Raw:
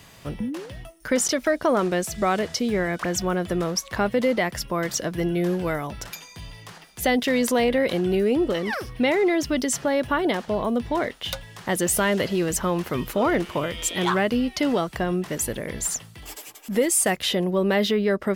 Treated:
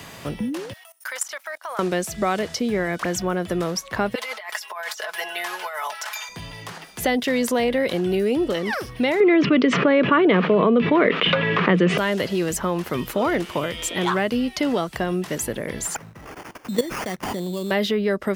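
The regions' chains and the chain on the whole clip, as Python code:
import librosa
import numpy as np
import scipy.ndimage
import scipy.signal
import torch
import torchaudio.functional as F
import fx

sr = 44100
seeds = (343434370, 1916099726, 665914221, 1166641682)

y = fx.chain(x, sr, fx.highpass(hz=820.0, slope=24),
    fx.high_shelf(hz=10000.0, db=12.0),
    fx.level_steps(step_db=18), at=(0.73, 1.79))
y = fx.chain(y, sr, fx.highpass(hz=760.0, slope=24),
    fx.comb(ms=4.7, depth=0.97),
    fx.over_compress(threshold_db=-34.0, ratio=-1.0), at=(4.15, 6.29))
y = fx.chain(y, sr, fx.cabinet(low_hz=150.0, low_slope=24, high_hz=3000.0, hz=(180.0, 310.0, 440.0, 800.0, 1200.0, 2400.0), db=(10, 4, 9, -7, 7, 6)),
    fx.env_flatten(amount_pct=70), at=(9.2, 11.98))
y = fx.chain(y, sr, fx.peak_eq(hz=210.0, db=5.0, octaves=1.8),
    fx.level_steps(step_db=15),
    fx.sample_hold(seeds[0], rate_hz=3900.0, jitter_pct=0), at=(15.95, 17.71))
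y = fx.low_shelf(y, sr, hz=77.0, db=-6.0)
y = fx.band_squash(y, sr, depth_pct=40)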